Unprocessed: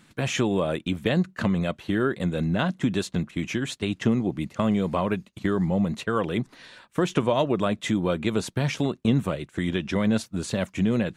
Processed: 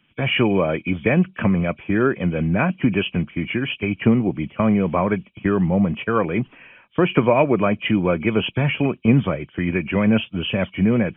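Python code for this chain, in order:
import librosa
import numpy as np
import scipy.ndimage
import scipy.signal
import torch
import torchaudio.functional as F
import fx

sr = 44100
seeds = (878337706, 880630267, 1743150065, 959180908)

y = fx.freq_compress(x, sr, knee_hz=2200.0, ratio=4.0)
y = fx.band_widen(y, sr, depth_pct=40)
y = y * librosa.db_to_amplitude(5.5)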